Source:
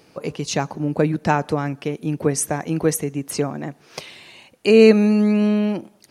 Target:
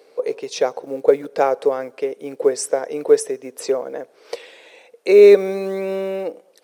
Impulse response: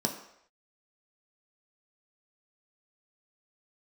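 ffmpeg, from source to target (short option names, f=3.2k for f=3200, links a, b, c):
-af "acrusher=bits=9:mode=log:mix=0:aa=0.000001,highpass=f=520:t=q:w=6.1,asetrate=40517,aresample=44100,volume=-3.5dB"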